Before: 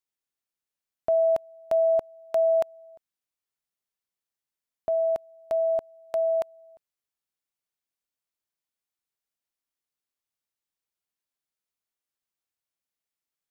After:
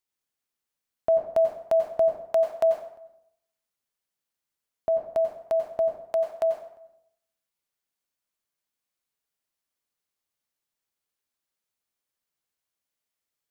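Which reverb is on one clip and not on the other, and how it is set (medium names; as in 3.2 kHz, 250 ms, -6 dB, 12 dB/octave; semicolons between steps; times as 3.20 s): plate-style reverb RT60 0.7 s, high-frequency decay 0.7×, pre-delay 80 ms, DRR 3.5 dB; trim +2 dB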